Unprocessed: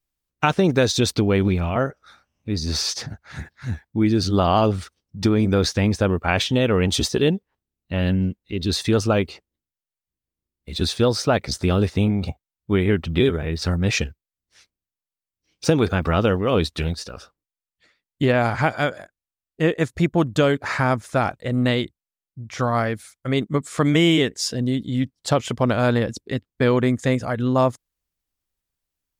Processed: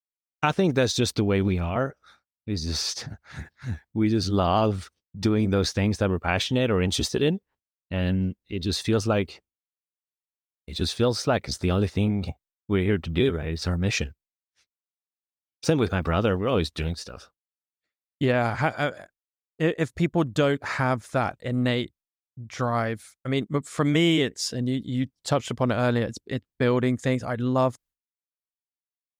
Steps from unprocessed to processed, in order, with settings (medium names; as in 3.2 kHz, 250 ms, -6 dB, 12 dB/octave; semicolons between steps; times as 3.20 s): expander -45 dBFS; trim -4 dB